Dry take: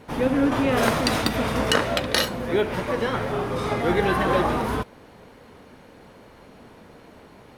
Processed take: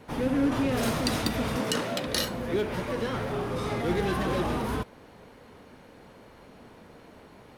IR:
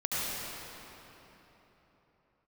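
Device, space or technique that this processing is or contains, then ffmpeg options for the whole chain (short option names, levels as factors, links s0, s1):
one-band saturation: -filter_complex "[0:a]asettb=1/sr,asplit=3[s0][s1][s2];[s0]atrim=end=1.564[s3];[s1]atrim=start=1.56:end=2.07,asetpts=PTS-STARTPTS,afade=t=in:d=0.004:c=qsin,afade=t=out:st=0.506:d=0.004:c=qsin,highpass=f=130:w=0.5412,highpass=f=130:w=1.3066[s4];[s2]atrim=start=2.066[s5];[s3][s4]acrossfade=d=0.004:c1=hsin:c2=qsin[s6];[s6][s5]acrossfade=d=0.004:c1=qsin:c2=hsin,acrossover=split=380|3800[s7][s8][s9];[s8]asoftclip=type=tanh:threshold=0.0422[s10];[s7][s10][s9]amix=inputs=3:normalize=0,volume=0.708"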